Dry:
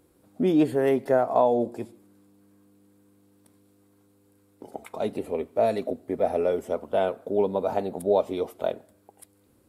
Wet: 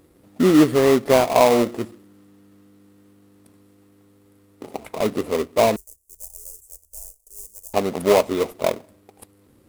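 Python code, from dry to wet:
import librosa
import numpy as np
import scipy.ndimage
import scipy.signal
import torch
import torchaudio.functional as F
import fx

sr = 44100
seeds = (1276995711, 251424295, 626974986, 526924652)

p1 = fx.sample_hold(x, sr, seeds[0], rate_hz=1600.0, jitter_pct=20)
p2 = x + (p1 * 10.0 ** (-3.0 / 20.0))
p3 = fx.cheby2_bandstop(p2, sr, low_hz=100.0, high_hz=4000.0, order=4, stop_db=40, at=(5.76, 7.74))
y = p3 * 10.0 ** (3.0 / 20.0)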